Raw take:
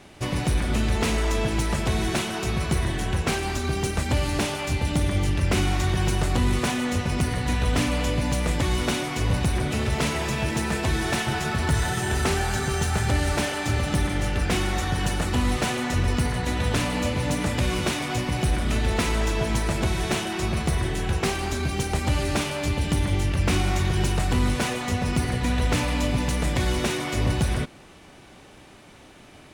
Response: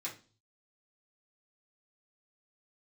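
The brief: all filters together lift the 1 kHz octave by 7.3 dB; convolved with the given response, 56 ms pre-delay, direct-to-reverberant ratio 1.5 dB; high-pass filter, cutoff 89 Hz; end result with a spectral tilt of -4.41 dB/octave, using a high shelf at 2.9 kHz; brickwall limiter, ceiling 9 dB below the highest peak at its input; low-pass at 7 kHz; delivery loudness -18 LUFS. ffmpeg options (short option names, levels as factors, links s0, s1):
-filter_complex "[0:a]highpass=89,lowpass=7000,equalizer=f=1000:t=o:g=9,highshelf=f=2900:g=4,alimiter=limit=0.158:level=0:latency=1,asplit=2[s0][s1];[1:a]atrim=start_sample=2205,adelay=56[s2];[s1][s2]afir=irnorm=-1:irlink=0,volume=0.794[s3];[s0][s3]amix=inputs=2:normalize=0,volume=1.88"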